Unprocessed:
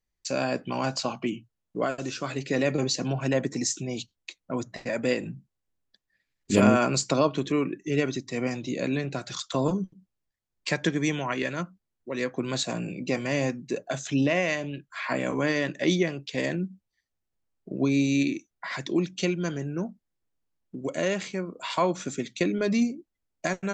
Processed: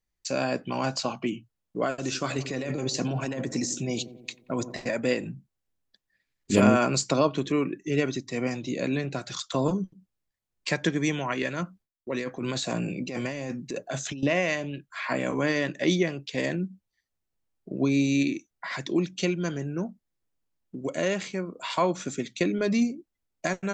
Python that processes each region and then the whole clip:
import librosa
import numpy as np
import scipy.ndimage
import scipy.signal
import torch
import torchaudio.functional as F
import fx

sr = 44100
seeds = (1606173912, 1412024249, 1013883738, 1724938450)

y = fx.chain(x, sr, fx.high_shelf(hz=6500.0, db=7.0),
    fx.over_compress(threshold_db=-29.0, ratio=-1.0),
    fx.echo_wet_lowpass(ms=90, feedback_pct=58, hz=990.0, wet_db=-12), at=(2.03, 4.91))
y = fx.chain(y, sr, fx.over_compress(threshold_db=-31.0, ratio=-1.0),
    fx.gate_hold(open_db=-43.0, close_db=-53.0, hold_ms=71.0, range_db=-21, attack_ms=1.4, release_ms=100.0), at=(11.62, 14.23))